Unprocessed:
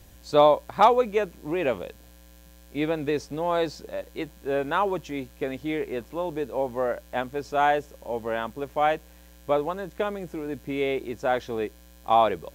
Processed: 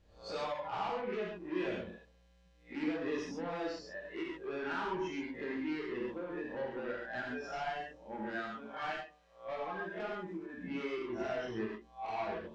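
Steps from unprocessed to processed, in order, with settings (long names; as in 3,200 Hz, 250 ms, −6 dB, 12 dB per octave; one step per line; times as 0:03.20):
peak hold with a rise ahead of every peak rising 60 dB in 0.44 s
hum removal 75.07 Hz, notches 17
noise reduction from a noise print of the clip's start 15 dB
0:08.28–0:10.58: low-shelf EQ 360 Hz −9.5 dB
downward compressor 10 to 1, threshold −27 dBFS, peak gain reduction 16 dB
soft clipping −33.5 dBFS, distortion −9 dB
high-frequency loss of the air 140 metres
reverb whose tail is shaped and stops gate 160 ms flat, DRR −3 dB
every ending faded ahead of time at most 180 dB per second
level −3.5 dB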